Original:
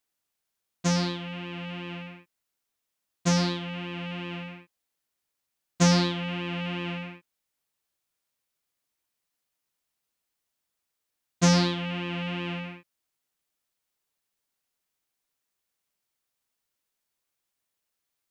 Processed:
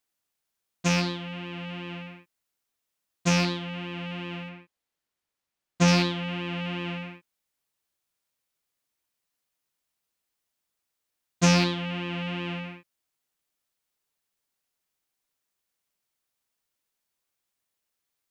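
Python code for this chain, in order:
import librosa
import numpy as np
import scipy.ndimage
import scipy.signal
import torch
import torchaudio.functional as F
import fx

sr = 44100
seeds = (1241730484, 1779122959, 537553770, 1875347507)

y = fx.rattle_buzz(x, sr, strikes_db=-27.0, level_db=-18.0)
y = fx.high_shelf(y, sr, hz=6100.0, db=-8.0, at=(4.49, 5.88))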